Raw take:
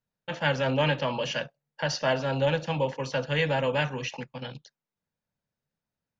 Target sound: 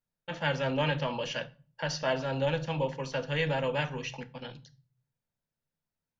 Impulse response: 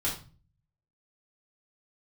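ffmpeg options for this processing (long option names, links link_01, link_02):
-filter_complex "[0:a]asplit=2[link_01][link_02];[1:a]atrim=start_sample=2205,lowshelf=frequency=71:gain=10[link_03];[link_02][link_03]afir=irnorm=-1:irlink=0,volume=-17.5dB[link_04];[link_01][link_04]amix=inputs=2:normalize=0,volume=-5dB"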